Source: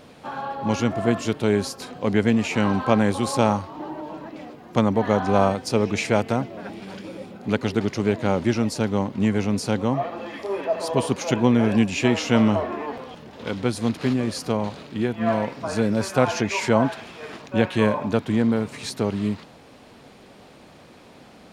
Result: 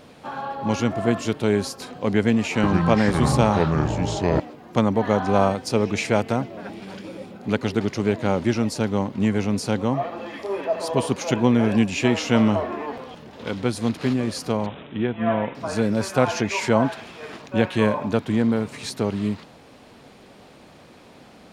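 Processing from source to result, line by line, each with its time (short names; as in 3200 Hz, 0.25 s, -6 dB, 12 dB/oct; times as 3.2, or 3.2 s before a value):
2.19–4.4 echoes that change speed 0.445 s, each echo -5 st, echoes 2
14.66–15.55 careless resampling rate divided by 6×, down none, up filtered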